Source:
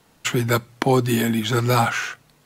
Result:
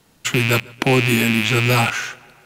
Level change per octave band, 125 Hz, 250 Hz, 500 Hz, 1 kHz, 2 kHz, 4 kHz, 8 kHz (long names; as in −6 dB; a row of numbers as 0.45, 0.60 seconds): +2.5, +2.0, +0.5, −1.0, +7.5, +6.0, +3.0 decibels